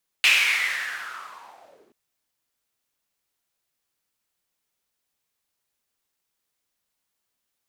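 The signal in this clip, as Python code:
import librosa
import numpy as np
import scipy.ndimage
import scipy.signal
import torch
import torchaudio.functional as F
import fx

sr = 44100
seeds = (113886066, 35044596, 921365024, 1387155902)

y = fx.riser_noise(sr, seeds[0], length_s=1.68, colour='white', kind='bandpass', start_hz=2600.0, end_hz=290.0, q=5.8, swell_db=-35.0, law='linear')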